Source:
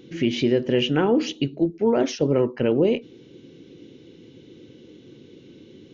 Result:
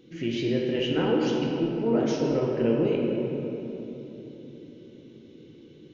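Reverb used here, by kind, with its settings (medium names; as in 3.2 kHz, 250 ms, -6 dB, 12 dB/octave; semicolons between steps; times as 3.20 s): simulated room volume 200 m³, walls hard, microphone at 0.65 m; trim -8.5 dB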